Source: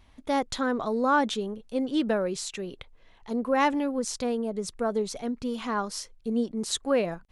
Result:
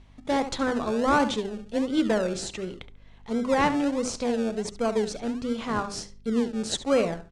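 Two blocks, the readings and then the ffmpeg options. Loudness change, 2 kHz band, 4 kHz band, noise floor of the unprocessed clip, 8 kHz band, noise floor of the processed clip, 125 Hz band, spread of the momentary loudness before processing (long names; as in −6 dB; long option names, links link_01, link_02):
+1.5 dB, +1.0 dB, +1.0 dB, −56 dBFS, 0.0 dB, −50 dBFS, +4.0 dB, 9 LU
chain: -filter_complex "[0:a]bandreject=frequency=50:width_type=h:width=6,bandreject=frequency=100:width_type=h:width=6,bandreject=frequency=150:width_type=h:width=6,bandreject=frequency=200:width_type=h:width=6,bandreject=frequency=250:width_type=h:width=6,bandreject=frequency=300:width_type=h:width=6,bandreject=frequency=350:width_type=h:width=6,bandreject=frequency=400:width_type=h:width=6,asplit=2[link_01][link_02];[link_02]adelay=70,lowpass=frequency=3600:poles=1,volume=-11dB,asplit=2[link_03][link_04];[link_04]adelay=70,lowpass=frequency=3600:poles=1,volume=0.25,asplit=2[link_05][link_06];[link_06]adelay=70,lowpass=frequency=3600:poles=1,volume=0.25[link_07];[link_01][link_03][link_05][link_07]amix=inputs=4:normalize=0,asplit=2[link_08][link_09];[link_09]acrusher=samples=34:mix=1:aa=0.000001:lfo=1:lforange=20.4:lforate=1.4,volume=-8dB[link_10];[link_08][link_10]amix=inputs=2:normalize=0,lowpass=frequency=9000:width=0.5412,lowpass=frequency=9000:width=1.3066,aeval=exprs='val(0)+0.00224*(sin(2*PI*50*n/s)+sin(2*PI*2*50*n/s)/2+sin(2*PI*3*50*n/s)/3+sin(2*PI*4*50*n/s)/4+sin(2*PI*5*50*n/s)/5)':channel_layout=same"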